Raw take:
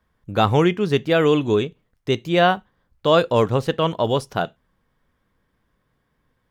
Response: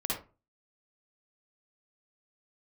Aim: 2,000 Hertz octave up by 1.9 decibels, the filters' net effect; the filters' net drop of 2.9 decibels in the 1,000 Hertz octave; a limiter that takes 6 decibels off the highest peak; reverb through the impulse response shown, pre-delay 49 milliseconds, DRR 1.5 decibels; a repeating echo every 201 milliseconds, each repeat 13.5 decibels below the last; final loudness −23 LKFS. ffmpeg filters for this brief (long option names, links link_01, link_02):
-filter_complex "[0:a]equalizer=frequency=1000:width_type=o:gain=-5.5,equalizer=frequency=2000:width_type=o:gain=5,alimiter=limit=-10.5dB:level=0:latency=1,aecho=1:1:201|402:0.211|0.0444,asplit=2[link_01][link_02];[1:a]atrim=start_sample=2205,adelay=49[link_03];[link_02][link_03]afir=irnorm=-1:irlink=0,volume=-6.5dB[link_04];[link_01][link_04]amix=inputs=2:normalize=0,volume=-3dB"